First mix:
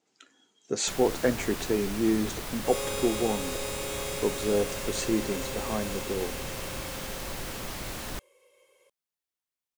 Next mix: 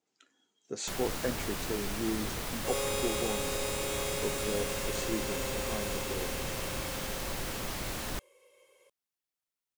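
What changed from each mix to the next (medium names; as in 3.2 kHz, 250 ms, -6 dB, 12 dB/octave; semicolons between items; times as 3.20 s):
speech -8.5 dB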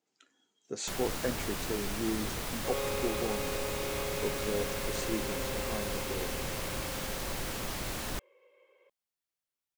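second sound: add Chebyshev band-pass 280–2200 Hz, order 2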